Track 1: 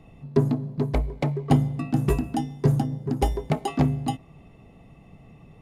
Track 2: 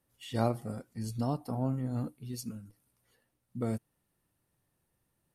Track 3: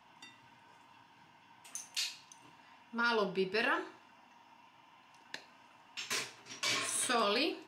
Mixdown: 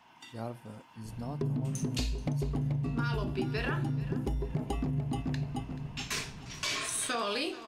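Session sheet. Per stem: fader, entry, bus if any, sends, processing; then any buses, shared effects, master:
−9.0 dB, 1.05 s, bus A, no send, echo send −4 dB, low-shelf EQ 250 Hz +9 dB; brickwall limiter −10 dBFS, peak gain reduction 8 dB
−12.0 dB, 0.00 s, bus A, no send, no echo send, no processing
+2.5 dB, 0.00 s, no bus, no send, echo send −20 dB, no processing
bus A: 0.0 dB, automatic gain control gain up to 4.5 dB; brickwall limiter −20.5 dBFS, peak gain reduction 6.5 dB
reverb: not used
echo: repeating echo 432 ms, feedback 36%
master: downward compressor 5 to 1, threshold −29 dBFS, peak gain reduction 9 dB

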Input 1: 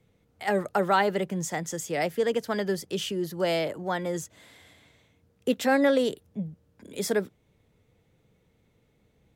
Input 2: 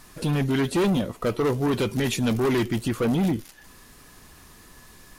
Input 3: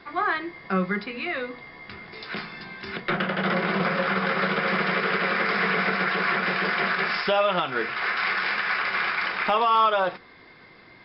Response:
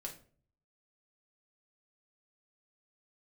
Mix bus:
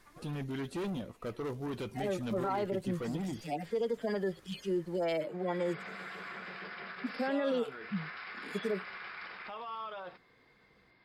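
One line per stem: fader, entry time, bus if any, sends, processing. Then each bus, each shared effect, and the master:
+1.0 dB, 1.55 s, bus A, no send, harmonic-percussive split with one part muted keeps harmonic; parametric band 94 Hz −14 dB 1.4 octaves; brickwall limiter −20 dBFS, peak gain reduction 8 dB
−14.5 dB, 0.00 s, bus A, no send, no processing
−16.0 dB, 0.00 s, no bus, no send, brickwall limiter −19.5 dBFS, peak gain reduction 6.5 dB; automatic ducking −23 dB, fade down 0.30 s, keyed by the second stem
bus A: 0.0 dB, high-shelf EQ 6,600 Hz −5 dB; brickwall limiter −25 dBFS, peak gain reduction 7.5 dB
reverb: not used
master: no processing

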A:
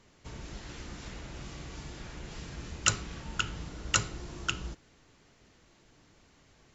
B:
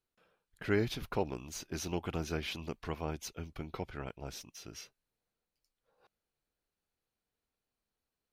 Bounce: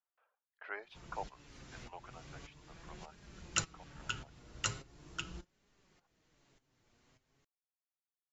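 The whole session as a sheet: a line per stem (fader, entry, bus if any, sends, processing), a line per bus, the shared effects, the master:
−2.5 dB, 0.70 s, no send, shaped tremolo saw up 1.7 Hz, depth 85%; flanger 0.4 Hz, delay 4.8 ms, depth 3.7 ms, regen +43%
0:01.77 −1 dB → 0:02.41 −9.5 dB, 0.00 s, no send, low-pass filter 1,500 Hz 12 dB per octave; reverb reduction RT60 1.7 s; high-pass filter 680 Hz 24 dB per octave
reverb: not used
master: no processing

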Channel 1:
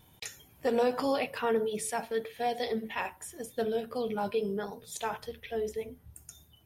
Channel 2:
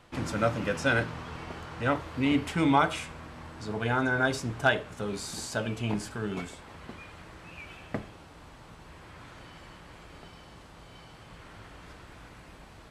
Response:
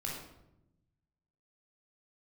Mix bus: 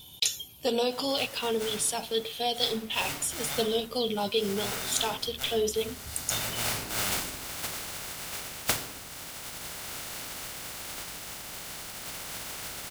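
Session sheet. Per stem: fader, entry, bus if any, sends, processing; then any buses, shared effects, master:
+2.5 dB, 0.00 s, no send, high shelf with overshoot 2,500 Hz +9 dB, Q 3
−13.5 dB, 0.75 s, send −6 dB, compressing power law on the bin magnitudes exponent 0.13; automatic gain control gain up to 15.5 dB; automatic ducking −17 dB, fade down 1.90 s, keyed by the first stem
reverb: on, RT60 0.90 s, pre-delay 16 ms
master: speech leveller within 5 dB 0.5 s

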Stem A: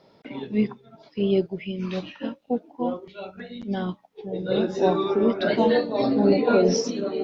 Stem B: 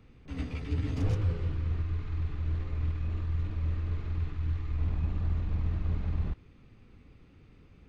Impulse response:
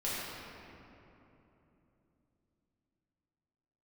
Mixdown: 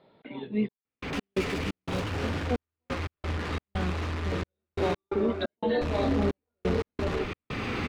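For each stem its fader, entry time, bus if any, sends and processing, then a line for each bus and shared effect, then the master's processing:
−3.5 dB, 0.00 s, no send, no echo send, elliptic low-pass filter 4,000 Hz; brickwall limiter −14.5 dBFS, peak gain reduction 6.5 dB
−4.0 dB, 0.85 s, muted 0:04.95–0:05.81, send −17.5 dB, echo send −20.5 dB, mid-hump overdrive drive 44 dB, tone 3,700 Hz, clips at −17.5 dBFS; envelope flattener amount 50%; automatic ducking −7 dB, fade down 1.45 s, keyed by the first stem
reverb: on, RT60 3.2 s, pre-delay 5 ms
echo: repeating echo 576 ms, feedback 52%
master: gate pattern "xxxx..x.xx." 88 BPM −60 dB

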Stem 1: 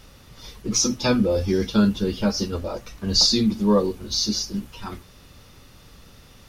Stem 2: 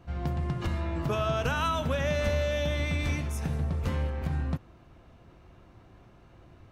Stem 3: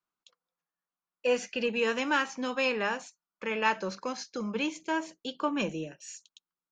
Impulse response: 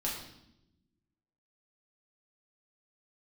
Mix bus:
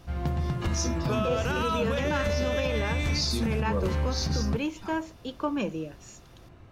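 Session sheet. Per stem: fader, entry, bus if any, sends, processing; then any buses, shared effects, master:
−9.5 dB, 0.00 s, no send, level that may rise only so fast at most 160 dB per second
+2.0 dB, 0.00 s, no send, no processing
−1.5 dB, 0.00 s, no send, tilt shelving filter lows +4 dB, about 1,300 Hz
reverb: not used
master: brickwall limiter −18 dBFS, peak gain reduction 7.5 dB

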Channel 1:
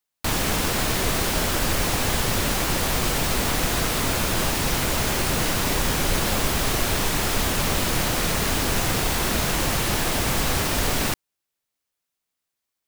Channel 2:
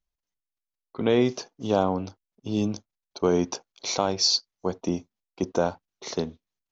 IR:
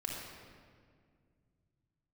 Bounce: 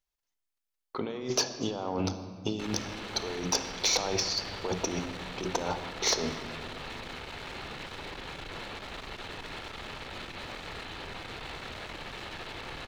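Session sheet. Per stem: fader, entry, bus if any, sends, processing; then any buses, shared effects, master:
−8.5 dB, 2.35 s, send −3.5 dB, Chebyshev low-pass filter 4,200 Hz, order 5; brickwall limiter −22 dBFS, peak gain reduction 10 dB; asymmetric clip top −37.5 dBFS, bottom −25 dBFS
+2.5 dB, 0.00 s, send −7 dB, mains-hum notches 60/120/180 Hz; noise gate −53 dBFS, range −9 dB; compressor whose output falls as the input rises −33 dBFS, ratio −1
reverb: on, RT60 2.0 s, pre-delay 28 ms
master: low-shelf EQ 370 Hz −8.5 dB; soft clipping −15.5 dBFS, distortion −20 dB

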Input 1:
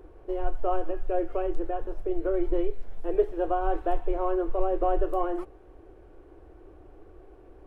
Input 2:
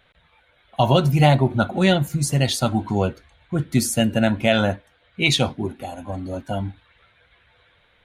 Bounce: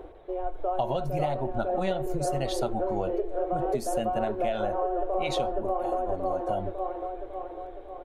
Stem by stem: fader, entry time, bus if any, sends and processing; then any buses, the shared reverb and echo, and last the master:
+2.5 dB, 0.00 s, no send, echo send −7 dB, automatic ducking −11 dB, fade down 0.25 s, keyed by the second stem
−9.5 dB, 0.00 s, no send, no echo send, no processing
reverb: not used
echo: repeating echo 550 ms, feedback 55%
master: parametric band 660 Hz +12 dB 1.4 octaves; downward compressor 10 to 1, threshold −24 dBFS, peak gain reduction 14 dB

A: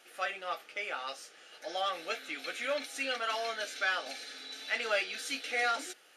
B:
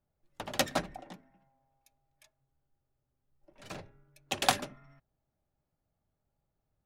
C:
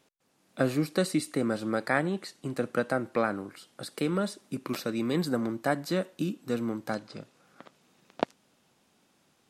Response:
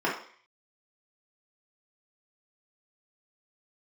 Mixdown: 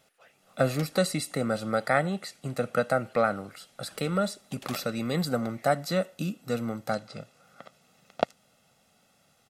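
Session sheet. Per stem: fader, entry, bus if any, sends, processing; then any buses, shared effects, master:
−17.0 dB, 0.00 s, no send, random phases in short frames; automatic ducking −10 dB, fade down 0.35 s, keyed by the third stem
−15.5 dB, 0.20 s, no send, no processing
+1.0 dB, 0.00 s, no send, comb filter 1.5 ms, depth 66%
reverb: not used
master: high-shelf EQ 11,000 Hz +3.5 dB

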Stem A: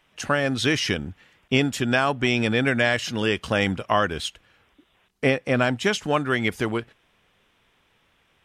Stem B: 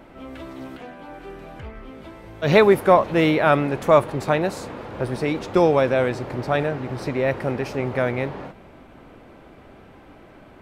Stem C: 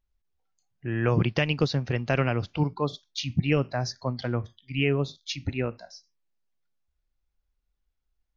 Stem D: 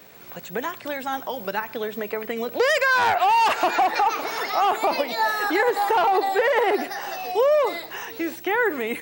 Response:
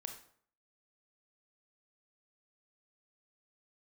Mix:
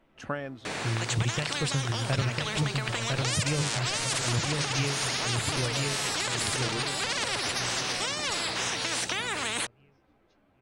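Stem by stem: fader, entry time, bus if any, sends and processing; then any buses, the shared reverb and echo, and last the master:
−6.5 dB, 0.00 s, no send, no echo send, low-pass filter 1,600 Hz 6 dB per octave; automatic ducking −23 dB, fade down 0.50 s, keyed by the third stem
−11.5 dB, 0.00 s, no send, no echo send, tube saturation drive 21 dB, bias 0.8; string-ensemble chorus
−2.0 dB, 0.00 s, no send, echo send −3.5 dB, low shelf with overshoot 150 Hz +7 dB, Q 1.5; tremolo along a rectified sine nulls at 2.3 Hz
0.0 dB, 0.65 s, no send, no echo send, Chebyshev low-pass filter 9,500 Hz, order 4; every bin compressed towards the loudest bin 10 to 1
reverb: not used
echo: repeating echo 1,002 ms, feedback 37%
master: downward compressor 2 to 1, threshold −28 dBFS, peak gain reduction 7 dB

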